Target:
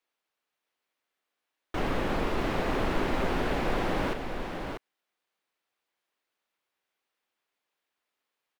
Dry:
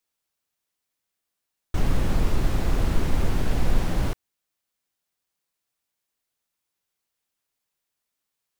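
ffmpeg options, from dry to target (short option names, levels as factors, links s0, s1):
-filter_complex "[0:a]acrossover=split=250 3700:gain=0.158 1 0.2[s0][s1][s2];[s0][s1][s2]amix=inputs=3:normalize=0,asplit=2[s3][s4];[s4]aecho=0:1:640:0.501[s5];[s3][s5]amix=inputs=2:normalize=0,volume=1.5"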